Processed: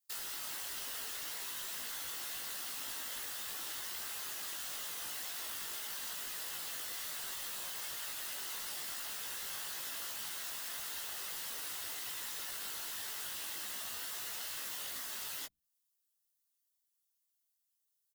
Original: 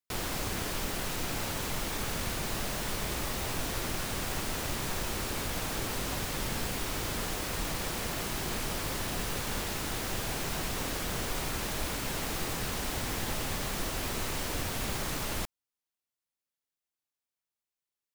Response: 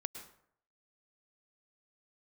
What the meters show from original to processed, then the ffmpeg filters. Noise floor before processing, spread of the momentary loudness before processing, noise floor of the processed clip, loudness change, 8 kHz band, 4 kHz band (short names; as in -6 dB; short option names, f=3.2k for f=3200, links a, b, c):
under -85 dBFS, 0 LU, -82 dBFS, -5.5 dB, -4.5 dB, -5.5 dB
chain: -filter_complex "[0:a]bandreject=f=2.5k:w=5.7,acrossover=split=700|3700[a][b][c];[a]acompressor=threshold=-38dB:ratio=4[d];[b]acompressor=threshold=-42dB:ratio=4[e];[c]acompressor=threshold=-53dB:ratio=4[f];[d][e][f]amix=inputs=3:normalize=0,afftfilt=real='re*lt(hypot(re,im),0.0251)':imag='im*lt(hypot(re,im),0.0251)':win_size=1024:overlap=0.75,bandreject=f=60:t=h:w=6,bandreject=f=120:t=h:w=6,bandreject=f=180:t=h:w=6,bandreject=f=240:t=h:w=6,bandreject=f=300:t=h:w=6,bandreject=f=360:t=h:w=6,flanger=delay=4.5:depth=1.9:regen=-4:speed=1:shape=sinusoidal,afftfilt=real='hypot(re,im)*cos(2*PI*random(0))':imag='hypot(re,im)*sin(2*PI*random(1))':win_size=512:overlap=0.75,crystalizer=i=8:c=0,afreqshift=-170,asplit=2[g][h];[h]adelay=18,volume=-3.5dB[i];[g][i]amix=inputs=2:normalize=0,volume=-4dB"